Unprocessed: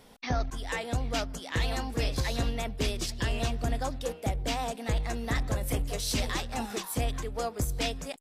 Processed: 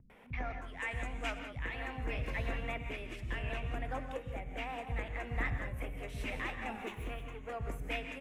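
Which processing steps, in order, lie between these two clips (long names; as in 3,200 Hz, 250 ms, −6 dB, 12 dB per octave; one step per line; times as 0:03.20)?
0:06.70–0:07.43: lower of the sound and its delayed copy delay 0.3 ms
multiband delay without the direct sound lows, highs 100 ms, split 190 Hz
shaped tremolo saw up 0.72 Hz, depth 50%
reverb whose tail is shaped and stops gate 210 ms rising, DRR 6.5 dB
upward compression, threshold −44 dBFS
0:00.80–0:01.39: octave-band graphic EQ 125/500/8,000 Hz −6/−4/+10 dB
tape wow and flutter 26 cents
high shelf with overshoot 3,300 Hz −12 dB, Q 3
level −6.5 dB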